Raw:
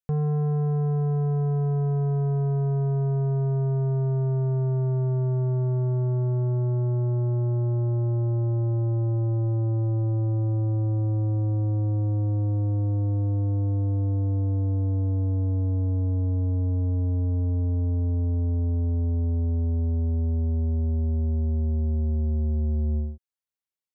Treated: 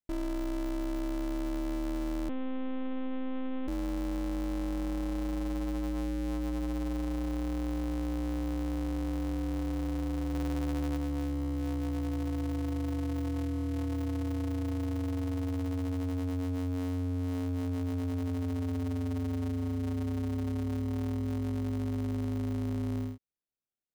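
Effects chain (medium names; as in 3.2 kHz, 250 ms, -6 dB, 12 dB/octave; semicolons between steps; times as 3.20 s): 10.34–10.97 s: bass shelf 330 Hz +6.5 dB; in parallel at -2 dB: sample-rate reducer 1 kHz, jitter 0%; on the sum: saturation -21 dBFS, distortion -16 dB; ring modulator 180 Hz; 2.29–3.68 s: monotone LPC vocoder at 8 kHz 260 Hz; trim -6.5 dB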